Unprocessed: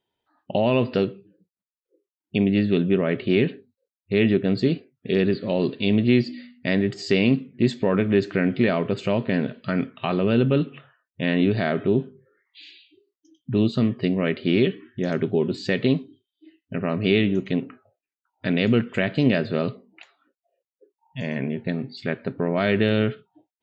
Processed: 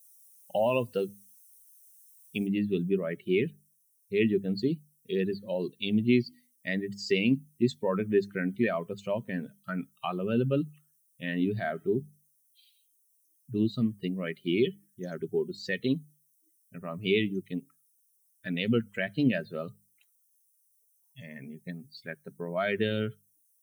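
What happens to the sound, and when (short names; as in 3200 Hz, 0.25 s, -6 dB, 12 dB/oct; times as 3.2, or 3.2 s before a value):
2.47 noise floor step -50 dB -56 dB
whole clip: per-bin expansion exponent 2; HPF 150 Hz 6 dB/oct; notches 50/100/150/200 Hz; gain -1 dB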